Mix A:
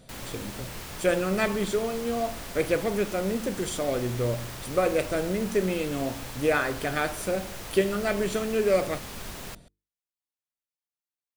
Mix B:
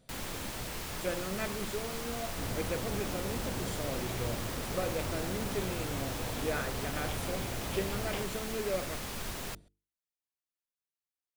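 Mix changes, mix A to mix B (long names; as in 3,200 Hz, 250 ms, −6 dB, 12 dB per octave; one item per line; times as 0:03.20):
speech −11.5 dB
second sound: unmuted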